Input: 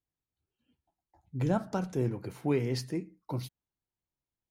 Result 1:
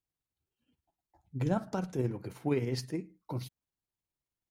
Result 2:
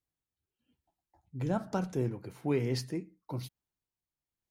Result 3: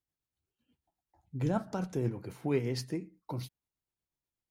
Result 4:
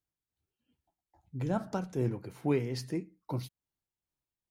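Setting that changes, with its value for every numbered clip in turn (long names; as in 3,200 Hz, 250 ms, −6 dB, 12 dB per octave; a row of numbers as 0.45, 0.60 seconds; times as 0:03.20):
amplitude tremolo, speed: 19, 1.1, 8.2, 2.4 Hertz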